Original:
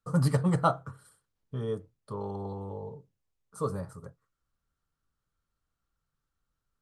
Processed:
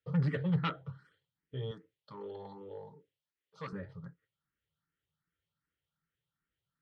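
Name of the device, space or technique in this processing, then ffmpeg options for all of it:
barber-pole phaser into a guitar amplifier: -filter_complex "[0:a]asplit=2[a][b];[b]afreqshift=2.6[c];[a][c]amix=inputs=2:normalize=1,asoftclip=type=tanh:threshold=-27dB,highpass=96,equalizer=f=160:t=q:w=4:g=6,equalizer=f=230:t=q:w=4:g=-5,equalizer=f=710:t=q:w=4:g=-9,equalizer=f=1.1k:t=q:w=4:g=-8,equalizer=f=1.9k:t=q:w=4:g=7,equalizer=f=3.2k:t=q:w=4:g=7,lowpass=f=3.9k:w=0.5412,lowpass=f=3.9k:w=1.3066,asettb=1/sr,asplit=3[d][e][f];[d]atrim=end=1.714[g];[e]atrim=start=1.71:end=3.73,asetpts=PTS-STARTPTS,afade=t=in:d=0.004:c=qsin,afade=t=out:st=2.016:d=0.004:c=qsin,bass=f=250:g=-13,treble=f=4k:g=8[h];[f]atrim=start=3.726[i];[g][h]acrossfade=d=0.004:c1=hsin:c2=qsin[j];[j][i]acrossfade=d=0.004:c1=qsin:c2=hsin"

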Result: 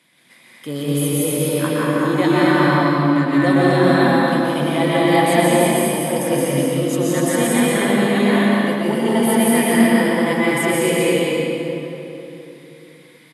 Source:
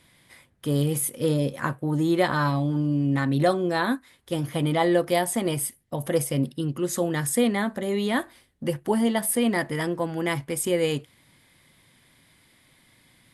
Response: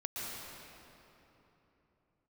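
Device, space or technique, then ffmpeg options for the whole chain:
stadium PA: -filter_complex "[0:a]highpass=f=160:w=0.5412,highpass=f=160:w=1.3066,equalizer=f=2.4k:t=o:w=0.83:g=4,aecho=1:1:172|244.9:0.708|0.794[a];[1:a]atrim=start_sample=2205[b];[a][b]afir=irnorm=-1:irlink=0,volume=2.5dB"

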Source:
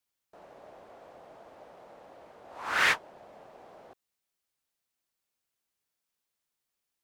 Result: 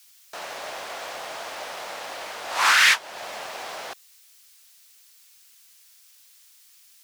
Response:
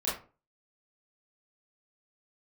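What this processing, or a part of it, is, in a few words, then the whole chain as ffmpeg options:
mastering chain: -af "tiltshelf=f=860:g=-9,equalizer=f=5.4k:t=o:w=0.77:g=2,acompressor=threshold=-33dB:ratio=2,tiltshelf=f=1.2k:g=-4,asoftclip=type=hard:threshold=-18dB,alimiter=level_in=25.5dB:limit=-1dB:release=50:level=0:latency=1,volume=-7.5dB"

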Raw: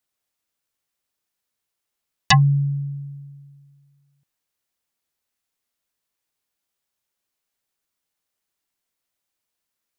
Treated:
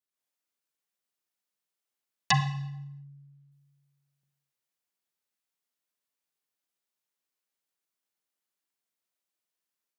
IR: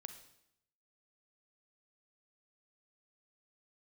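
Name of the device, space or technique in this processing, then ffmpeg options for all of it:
far laptop microphone: -filter_complex "[1:a]atrim=start_sample=2205[a];[0:a][a]afir=irnorm=-1:irlink=0,highpass=150,dynaudnorm=f=110:g=3:m=6dB,asettb=1/sr,asplit=3[b][c][d];[b]atrim=end=2.314[e];[c]atrim=start=2.31:end=3.52,asetpts=PTS-STARTPTS,afade=t=in:d=0.004:c=qsin,afade=t=out:st=1.206:d=0.004:c=qsin,aemphasis=mode=reproduction:type=50fm[f];[d]atrim=start=3.516[g];[e][f]acrossfade=d=0.004:c1=hsin:c2=qsin[h];[h][g]acrossfade=d=0.004:c1=qsin:c2=hsin,volume=-8dB"

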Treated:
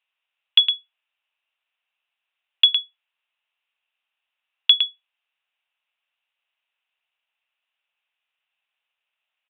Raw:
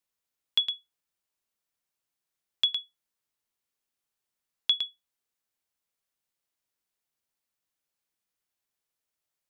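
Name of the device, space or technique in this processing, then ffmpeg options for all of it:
musical greeting card: -af "aresample=8000,aresample=44100,highpass=f=650:w=0.5412,highpass=f=650:w=1.3066,equalizer=f=2.7k:t=o:w=0.43:g=12,volume=6.5dB"

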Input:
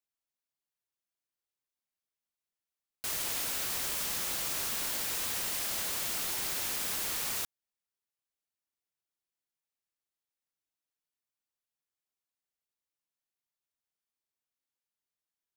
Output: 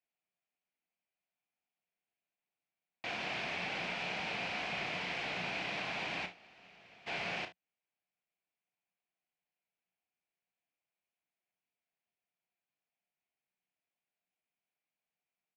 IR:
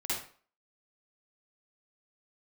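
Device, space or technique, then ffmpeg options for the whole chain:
ring modulator pedal into a guitar cabinet: -filter_complex "[0:a]asplit=3[a][b][c];[a]afade=t=out:st=6.25:d=0.02[d];[b]agate=range=-33dB:threshold=-20dB:ratio=3:detection=peak,afade=t=in:st=6.25:d=0.02,afade=t=out:st=7.06:d=0.02[e];[c]afade=t=in:st=7.06:d=0.02[f];[d][e][f]amix=inputs=3:normalize=0,aeval=exprs='val(0)*sgn(sin(2*PI*380*n/s))':c=same,highpass=78,equalizer=f=81:t=q:w=4:g=-8,equalizer=f=180:t=q:w=4:g=7,equalizer=f=710:t=q:w=4:g=9,equalizer=f=1.2k:t=q:w=4:g=-4,equalizer=f=2.4k:t=q:w=4:g=8,equalizer=f=3.7k:t=q:w=4:g=-4,lowpass=f=3.7k:w=0.5412,lowpass=f=3.7k:w=1.3066,aecho=1:1:33|55|72:0.335|0.168|0.126"

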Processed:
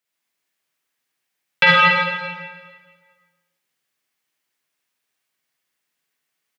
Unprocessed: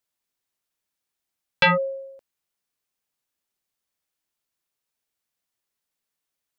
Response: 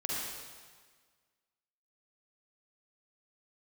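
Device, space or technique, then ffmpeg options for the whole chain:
PA in a hall: -filter_complex "[0:a]asplit=3[a][b][c];[a]afade=t=out:st=1.75:d=0.02[d];[b]highpass=1.2k,afade=t=in:st=1.75:d=0.02,afade=t=out:st=2.15:d=0.02[e];[c]afade=t=in:st=2.15:d=0.02[f];[d][e][f]amix=inputs=3:normalize=0,highpass=f=110:w=0.5412,highpass=f=110:w=1.3066,equalizer=f=2.1k:t=o:w=1.2:g=7,aecho=1:1:171:0.316[g];[1:a]atrim=start_sample=2205[h];[g][h]afir=irnorm=-1:irlink=0"

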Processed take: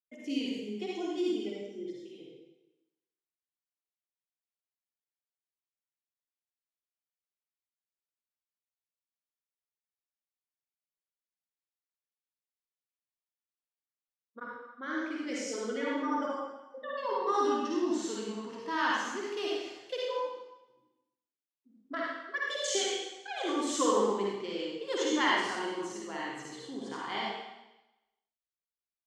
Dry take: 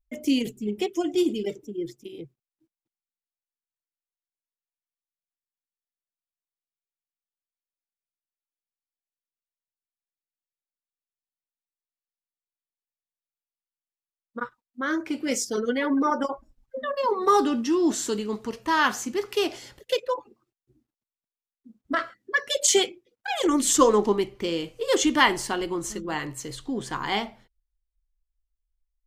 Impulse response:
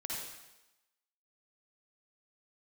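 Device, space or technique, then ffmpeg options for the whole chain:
supermarket ceiling speaker: -filter_complex "[0:a]highpass=240,lowpass=5.7k[a];[1:a]atrim=start_sample=2205[b];[a][b]afir=irnorm=-1:irlink=0,volume=-8dB"

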